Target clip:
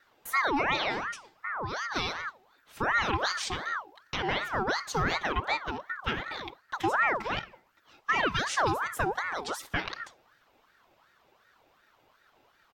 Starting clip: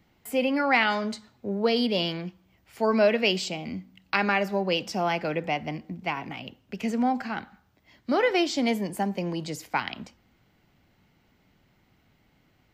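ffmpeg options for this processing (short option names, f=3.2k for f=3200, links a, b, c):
-filter_complex "[0:a]aecho=1:1:4.1:0.94,alimiter=limit=-16dB:level=0:latency=1:release=264,asettb=1/sr,asplit=3[a][b][c];[a]atrim=end=0.984[d];[b]atrim=start=0.98:end=1.96,asetpts=PTS-STARTPTS,afade=t=in:d=0.004:c=qsin,afade=t=out:st=0.976:d=0.004:c=qsin,acompressor=threshold=-30dB:ratio=4[e];[c]atrim=start=1.956[f];[d][e]acrossfade=d=0.004:c1=hsin:c2=qsin[g];[g][f]acrossfade=d=0.004:c1=qsin:c2=hsin,aeval=exprs='val(0)*sin(2*PI*1100*n/s+1100*0.5/2.7*sin(2*PI*2.7*n/s))':c=same"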